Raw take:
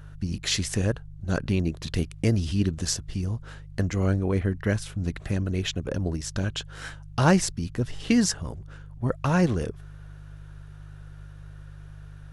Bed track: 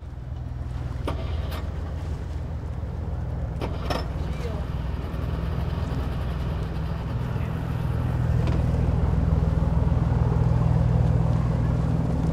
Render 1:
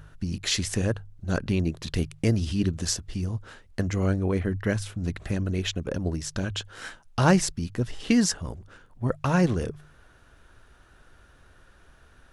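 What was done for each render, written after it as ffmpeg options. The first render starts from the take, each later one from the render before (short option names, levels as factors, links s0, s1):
-af "bandreject=f=50:t=h:w=4,bandreject=f=100:t=h:w=4,bandreject=f=150:t=h:w=4"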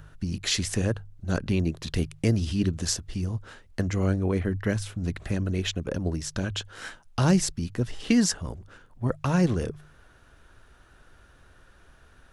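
-filter_complex "[0:a]acrossover=split=410|3000[s0][s1][s2];[s1]acompressor=threshold=0.0398:ratio=6[s3];[s0][s3][s2]amix=inputs=3:normalize=0"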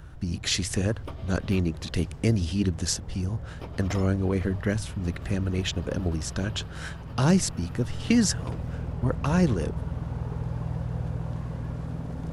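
-filter_complex "[1:a]volume=0.316[s0];[0:a][s0]amix=inputs=2:normalize=0"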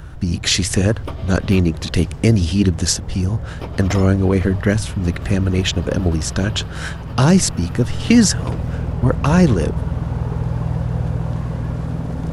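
-af "volume=3.16,alimiter=limit=0.794:level=0:latency=1"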